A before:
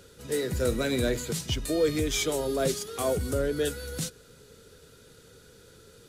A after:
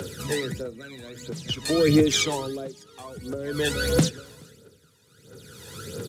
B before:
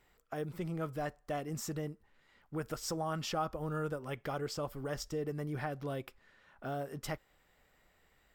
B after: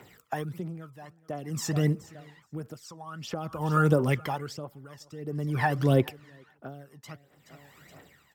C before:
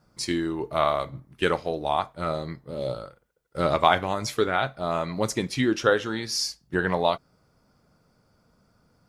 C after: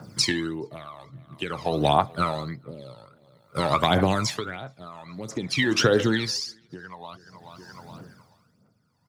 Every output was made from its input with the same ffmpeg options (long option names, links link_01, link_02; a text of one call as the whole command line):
ffmpeg -i in.wav -filter_complex "[0:a]acrossover=split=220|7100[link_01][link_02][link_03];[link_01]acompressor=threshold=-37dB:ratio=4[link_04];[link_02]acompressor=threshold=-24dB:ratio=4[link_05];[link_03]acompressor=threshold=-54dB:ratio=4[link_06];[link_04][link_05][link_06]amix=inputs=3:normalize=0,highpass=frequency=96:width=0.5412,highpass=frequency=96:width=1.3066,aphaser=in_gain=1:out_gain=1:delay=1.2:decay=0.68:speed=1.5:type=triangular,asplit=2[link_07][link_08];[link_08]alimiter=limit=-18.5dB:level=0:latency=1:release=414,volume=0dB[link_09];[link_07][link_09]amix=inputs=2:normalize=0,aecho=1:1:424|848|1272:0.0631|0.0271|0.0117,acompressor=threshold=-24dB:ratio=3,aeval=exprs='val(0)*pow(10,-22*(0.5-0.5*cos(2*PI*0.51*n/s))/20)':channel_layout=same,volume=7.5dB" out.wav